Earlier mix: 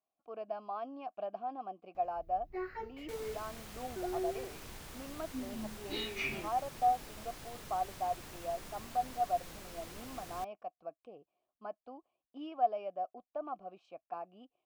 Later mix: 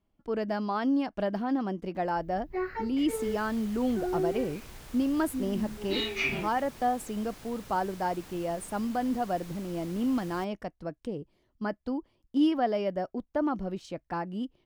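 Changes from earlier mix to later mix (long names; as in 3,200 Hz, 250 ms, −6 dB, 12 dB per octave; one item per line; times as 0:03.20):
speech: remove formant filter a
first sound +7.5 dB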